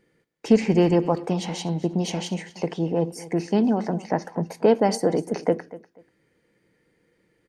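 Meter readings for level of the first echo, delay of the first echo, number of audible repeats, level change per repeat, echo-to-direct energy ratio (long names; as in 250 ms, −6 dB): −18.0 dB, 243 ms, 2, −13.0 dB, −18.0 dB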